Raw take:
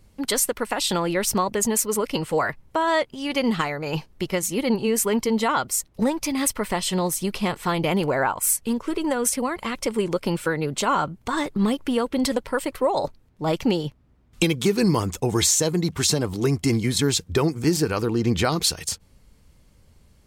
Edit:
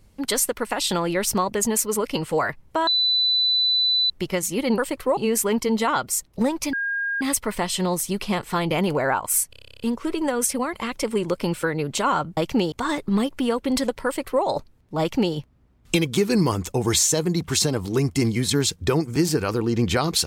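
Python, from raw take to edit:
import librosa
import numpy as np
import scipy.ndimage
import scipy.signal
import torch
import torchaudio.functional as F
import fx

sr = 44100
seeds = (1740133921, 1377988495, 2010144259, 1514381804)

y = fx.edit(x, sr, fx.bleep(start_s=2.87, length_s=1.23, hz=3990.0, db=-17.0),
    fx.insert_tone(at_s=6.34, length_s=0.48, hz=1620.0, db=-22.5),
    fx.stutter(start_s=8.63, slice_s=0.03, count=11),
    fx.duplicate(start_s=12.53, length_s=0.39, to_s=4.78),
    fx.duplicate(start_s=13.48, length_s=0.35, to_s=11.2), tone=tone)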